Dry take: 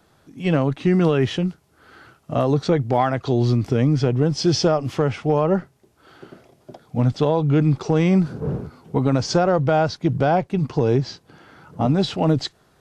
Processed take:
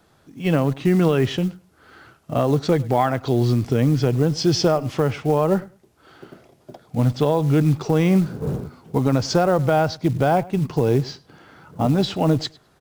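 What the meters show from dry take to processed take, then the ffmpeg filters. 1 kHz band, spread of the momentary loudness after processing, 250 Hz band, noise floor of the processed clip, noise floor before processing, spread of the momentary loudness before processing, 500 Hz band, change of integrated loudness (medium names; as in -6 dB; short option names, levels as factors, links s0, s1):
0.0 dB, 7 LU, 0.0 dB, -58 dBFS, -59 dBFS, 7 LU, 0.0 dB, 0.0 dB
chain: -filter_complex "[0:a]asplit=2[s0][s1];[s1]adelay=103,lowpass=f=4700:p=1,volume=0.0891,asplit=2[s2][s3];[s3]adelay=103,lowpass=f=4700:p=1,volume=0.17[s4];[s0][s2][s4]amix=inputs=3:normalize=0,acrusher=bits=7:mode=log:mix=0:aa=0.000001"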